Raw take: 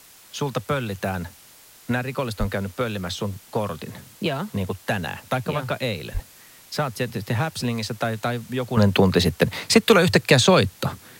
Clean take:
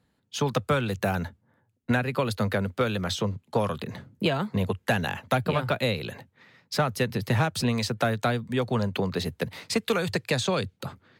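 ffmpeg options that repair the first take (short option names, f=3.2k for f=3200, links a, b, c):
-filter_complex "[0:a]asplit=3[a][b][c];[a]afade=t=out:st=2.39:d=0.02[d];[b]highpass=f=140:w=0.5412,highpass=f=140:w=1.3066,afade=t=in:st=2.39:d=0.02,afade=t=out:st=2.51:d=0.02[e];[c]afade=t=in:st=2.51:d=0.02[f];[d][e][f]amix=inputs=3:normalize=0,asplit=3[g][h][i];[g]afade=t=out:st=6.13:d=0.02[j];[h]highpass=f=140:w=0.5412,highpass=f=140:w=1.3066,afade=t=in:st=6.13:d=0.02,afade=t=out:st=6.25:d=0.02[k];[i]afade=t=in:st=6.25:d=0.02[l];[j][k][l]amix=inputs=3:normalize=0,afwtdn=0.004,asetnsamples=n=441:p=0,asendcmd='8.77 volume volume -10.5dB',volume=0dB"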